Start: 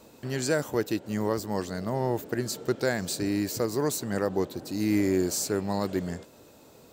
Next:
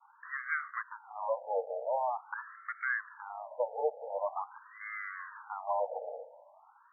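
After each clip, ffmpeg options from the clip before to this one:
-af "aeval=exprs='clip(val(0),-1,0.0473)':c=same,agate=range=0.0224:threshold=0.00316:ratio=3:detection=peak,afftfilt=real='re*between(b*sr/1024,620*pow(1600/620,0.5+0.5*sin(2*PI*0.45*pts/sr))/1.41,620*pow(1600/620,0.5+0.5*sin(2*PI*0.45*pts/sr))*1.41)':imag='im*between(b*sr/1024,620*pow(1600/620,0.5+0.5*sin(2*PI*0.45*pts/sr))/1.41,620*pow(1600/620,0.5+0.5*sin(2*PI*0.45*pts/sr))*1.41)':win_size=1024:overlap=0.75,volume=1.88"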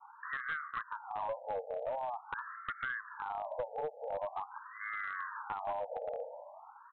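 -af "lowpass=1400,acompressor=threshold=0.00794:ratio=12,aresample=8000,aeval=exprs='clip(val(0),-1,0.00944)':c=same,aresample=44100,volume=2.51"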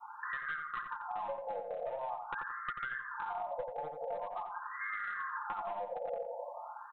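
-filter_complex "[0:a]aecho=1:1:5.7:0.86,acompressor=threshold=0.00891:ratio=6,asplit=2[s0][s1];[s1]adelay=88,lowpass=f=1800:p=1,volume=0.596,asplit=2[s2][s3];[s3]adelay=88,lowpass=f=1800:p=1,volume=0.31,asplit=2[s4][s5];[s5]adelay=88,lowpass=f=1800:p=1,volume=0.31,asplit=2[s6][s7];[s7]adelay=88,lowpass=f=1800:p=1,volume=0.31[s8];[s2][s4][s6][s8]amix=inputs=4:normalize=0[s9];[s0][s9]amix=inputs=2:normalize=0,volume=1.58"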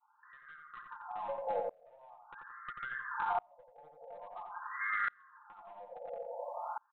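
-af "aeval=exprs='val(0)*pow(10,-32*if(lt(mod(-0.59*n/s,1),2*abs(-0.59)/1000),1-mod(-0.59*n/s,1)/(2*abs(-0.59)/1000),(mod(-0.59*n/s,1)-2*abs(-0.59)/1000)/(1-2*abs(-0.59)/1000))/20)':c=same,volume=2.37"

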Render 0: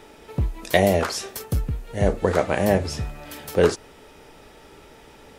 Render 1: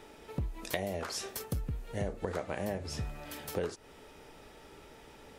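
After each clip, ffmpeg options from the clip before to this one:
-af "acompressor=threshold=0.0562:ratio=10,volume=0.501"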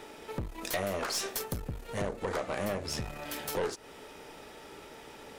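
-af "aeval=exprs='(tanh(50.1*val(0)+0.6)-tanh(0.6))/50.1':c=same,lowshelf=f=120:g=-11,volume=2.82"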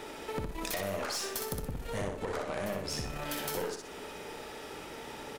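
-af "acompressor=threshold=0.0141:ratio=6,aecho=1:1:62|124|186|248|310:0.596|0.214|0.0772|0.0278|0.01,volume=1.5"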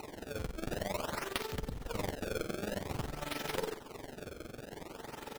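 -filter_complex "[0:a]asplit=2[s0][s1];[s1]acrusher=bits=3:mix=0:aa=0.000001,volume=0.668[s2];[s0][s2]amix=inputs=2:normalize=0,tremolo=f=22:d=0.788,acrusher=samples=26:mix=1:aa=0.000001:lfo=1:lforange=41.6:lforate=0.51,volume=1.12"

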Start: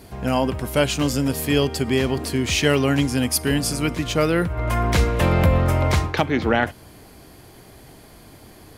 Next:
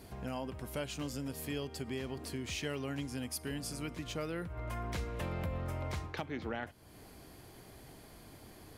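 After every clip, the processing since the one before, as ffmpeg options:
-af "acompressor=threshold=0.0158:ratio=2,volume=0.376"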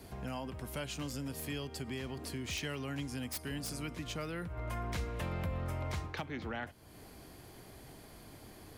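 -filter_complex "[0:a]acrossover=split=260|680|3100[s0][s1][s2][s3];[s1]alimiter=level_in=8.91:limit=0.0631:level=0:latency=1,volume=0.112[s4];[s3]aeval=exprs='(mod(47.3*val(0)+1,2)-1)/47.3':c=same[s5];[s0][s4][s2][s5]amix=inputs=4:normalize=0,volume=1.12"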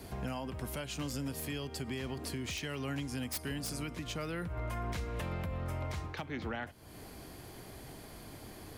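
-af "alimiter=level_in=2.66:limit=0.0631:level=0:latency=1:release=273,volume=0.376,volume=1.58"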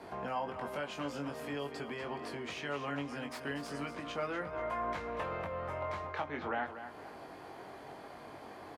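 -filter_complex "[0:a]bandpass=f=900:t=q:w=1:csg=0,asplit=2[s0][s1];[s1]adelay=21,volume=0.562[s2];[s0][s2]amix=inputs=2:normalize=0,aecho=1:1:240|480|720:0.282|0.0874|0.0271,volume=2"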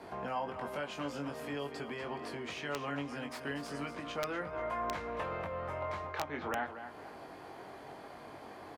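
-af "aeval=exprs='(mod(17.8*val(0)+1,2)-1)/17.8':c=same"

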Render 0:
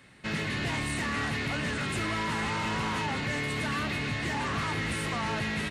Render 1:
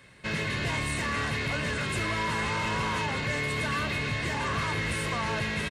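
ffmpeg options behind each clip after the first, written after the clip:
-af "aecho=1:1:1.9:0.36,volume=1.12"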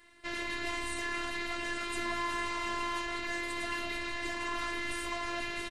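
-af "afftfilt=real='hypot(re,im)*cos(PI*b)':imag='0':win_size=512:overlap=0.75,volume=0.841"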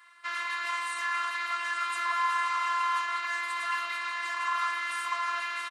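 -af "highpass=f=1200:t=q:w=7.3"

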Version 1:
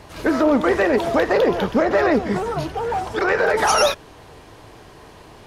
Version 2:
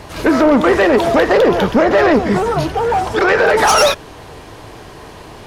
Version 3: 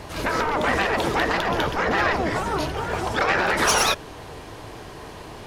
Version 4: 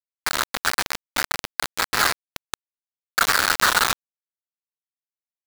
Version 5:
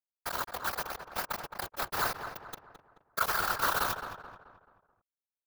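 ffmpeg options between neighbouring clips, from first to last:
-af "asoftclip=type=tanh:threshold=0.2,volume=2.66"
-af "afftfilt=real='re*lt(hypot(re,im),1)':imag='im*lt(hypot(re,im),1)':win_size=1024:overlap=0.75,volume=0.668"
-filter_complex "[0:a]bandpass=f=1400:t=q:w=4.1:csg=0,asplit=2[s0][s1];[s1]aeval=exprs='(mod(29.9*val(0)+1,2)-1)/29.9':c=same,volume=0.355[s2];[s0][s2]amix=inputs=2:normalize=0,acrusher=bits=3:mix=0:aa=0.000001,volume=2.37"
-filter_complex "[0:a]equalizer=f=250:t=o:w=1:g=-9,equalizer=f=2000:t=o:w=1:g=-11,equalizer=f=4000:t=o:w=1:g=-7,equalizer=f=8000:t=o:w=1:g=-11,afftfilt=real='hypot(re,im)*cos(2*PI*random(0))':imag='hypot(re,im)*sin(2*PI*random(1))':win_size=512:overlap=0.75,asplit=2[s0][s1];[s1]adelay=216,lowpass=f=2200:p=1,volume=0.398,asplit=2[s2][s3];[s3]adelay=216,lowpass=f=2200:p=1,volume=0.45,asplit=2[s4][s5];[s5]adelay=216,lowpass=f=2200:p=1,volume=0.45,asplit=2[s6][s7];[s7]adelay=216,lowpass=f=2200:p=1,volume=0.45,asplit=2[s8][s9];[s9]adelay=216,lowpass=f=2200:p=1,volume=0.45[s10];[s2][s4][s6][s8][s10]amix=inputs=5:normalize=0[s11];[s0][s11]amix=inputs=2:normalize=0,volume=1.19"

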